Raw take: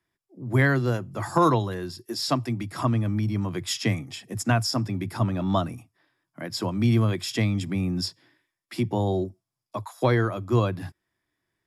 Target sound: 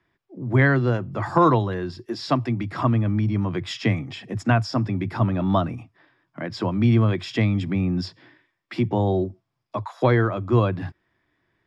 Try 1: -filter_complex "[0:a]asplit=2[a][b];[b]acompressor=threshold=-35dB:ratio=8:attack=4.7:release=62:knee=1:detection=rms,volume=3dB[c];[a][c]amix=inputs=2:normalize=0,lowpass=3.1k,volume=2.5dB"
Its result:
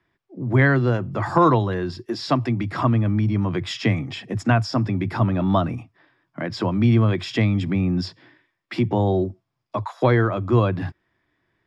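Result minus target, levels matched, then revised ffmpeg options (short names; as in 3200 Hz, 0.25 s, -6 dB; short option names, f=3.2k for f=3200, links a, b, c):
compressor: peak gain reduction -9 dB
-filter_complex "[0:a]asplit=2[a][b];[b]acompressor=threshold=-45.5dB:ratio=8:attack=4.7:release=62:knee=1:detection=rms,volume=3dB[c];[a][c]amix=inputs=2:normalize=0,lowpass=3.1k,volume=2.5dB"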